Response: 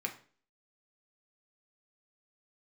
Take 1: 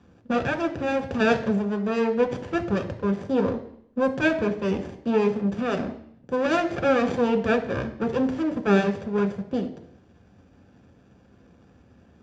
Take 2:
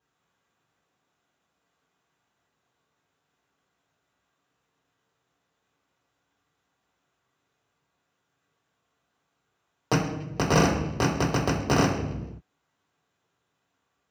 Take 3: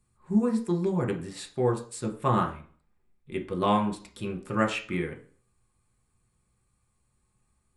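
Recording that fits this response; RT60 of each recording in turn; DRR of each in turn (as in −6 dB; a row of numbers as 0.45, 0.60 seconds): 3; 0.70 s, non-exponential decay, 0.45 s; 4.5, −8.0, 2.0 decibels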